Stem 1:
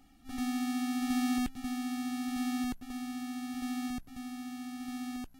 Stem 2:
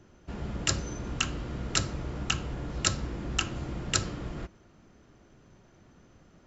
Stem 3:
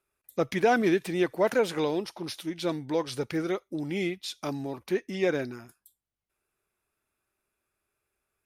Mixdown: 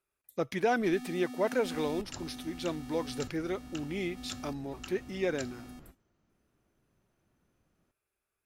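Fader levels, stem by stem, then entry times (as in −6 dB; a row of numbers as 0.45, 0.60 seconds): −10.0, −17.0, −5.0 decibels; 0.55, 1.45, 0.00 seconds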